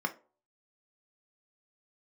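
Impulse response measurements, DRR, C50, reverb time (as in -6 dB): 5.0 dB, 17.0 dB, 0.40 s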